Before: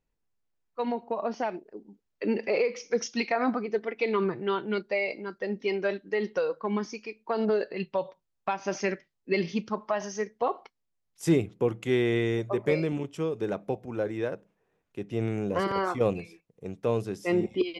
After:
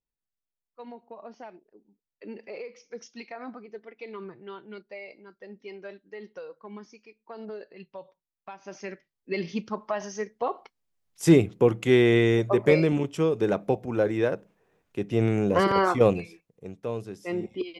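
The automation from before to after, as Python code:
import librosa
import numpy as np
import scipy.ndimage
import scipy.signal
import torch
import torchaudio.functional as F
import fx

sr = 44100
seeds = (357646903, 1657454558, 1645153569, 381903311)

y = fx.gain(x, sr, db=fx.line((8.5, -13.0), (9.57, -1.0), (10.51, -1.0), (11.31, 6.0), (16.03, 6.0), (16.89, -5.0)))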